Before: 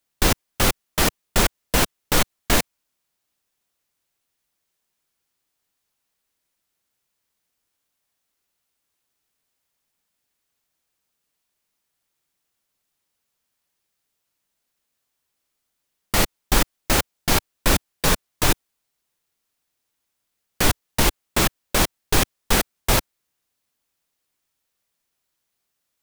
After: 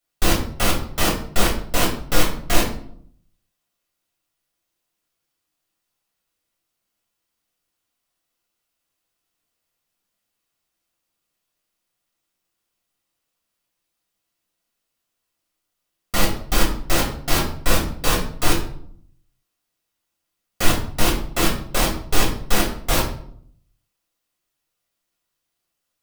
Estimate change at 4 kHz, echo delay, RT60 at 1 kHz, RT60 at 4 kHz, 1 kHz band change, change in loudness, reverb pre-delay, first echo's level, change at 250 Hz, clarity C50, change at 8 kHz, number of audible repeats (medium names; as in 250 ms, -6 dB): -0.5 dB, no echo, 0.55 s, 0.40 s, +0.5 dB, -0.5 dB, 4 ms, no echo, +1.5 dB, 7.0 dB, -1.5 dB, no echo